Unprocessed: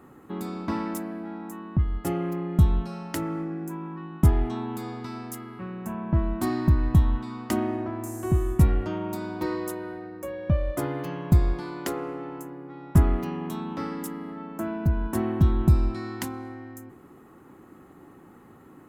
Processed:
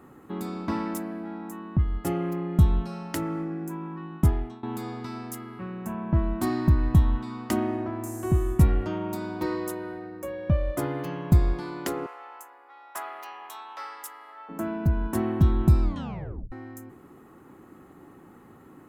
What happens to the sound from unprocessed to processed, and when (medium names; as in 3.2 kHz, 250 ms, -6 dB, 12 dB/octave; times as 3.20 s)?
4.13–4.63 s: fade out, to -19.5 dB
12.06–14.49 s: high-pass 710 Hz 24 dB/octave
15.82 s: tape stop 0.70 s